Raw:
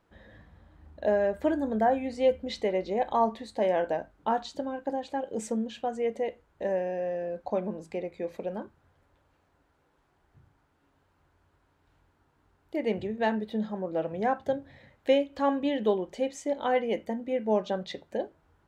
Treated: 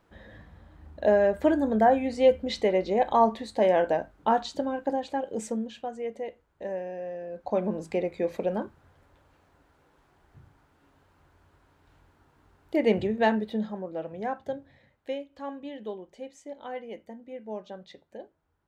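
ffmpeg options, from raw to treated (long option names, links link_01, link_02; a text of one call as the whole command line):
ffmpeg -i in.wav -af "volume=14.5dB,afade=type=out:start_time=4.8:duration=1.14:silence=0.375837,afade=type=in:start_time=7.29:duration=0.5:silence=0.298538,afade=type=out:start_time=12.99:duration=0.94:silence=0.298538,afade=type=out:start_time=14.57:duration=0.6:silence=0.473151" out.wav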